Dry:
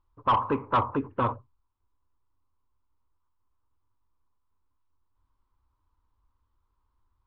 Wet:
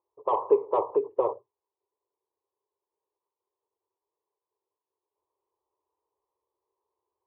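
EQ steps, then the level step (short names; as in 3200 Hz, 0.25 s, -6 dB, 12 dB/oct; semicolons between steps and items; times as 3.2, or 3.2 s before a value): resonant high-pass 400 Hz, resonance Q 4.9; LPF 1300 Hz 12 dB/oct; fixed phaser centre 610 Hz, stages 4; 0.0 dB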